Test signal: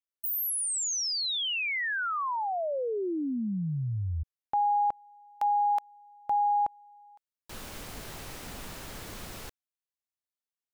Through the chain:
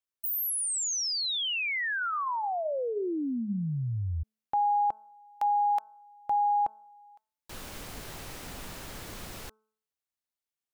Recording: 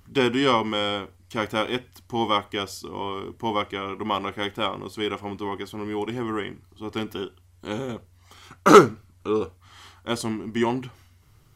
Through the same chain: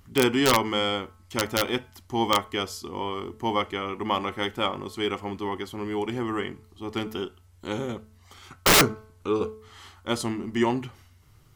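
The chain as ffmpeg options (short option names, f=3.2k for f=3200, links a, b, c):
-af "aeval=exprs='(mod(3.35*val(0)+1,2)-1)/3.35':c=same,bandreject=f=217.4:t=h:w=4,bandreject=f=434.8:t=h:w=4,bandreject=f=652.2:t=h:w=4,bandreject=f=869.6:t=h:w=4,bandreject=f=1.087k:t=h:w=4,bandreject=f=1.3044k:t=h:w=4,bandreject=f=1.5218k:t=h:w=4"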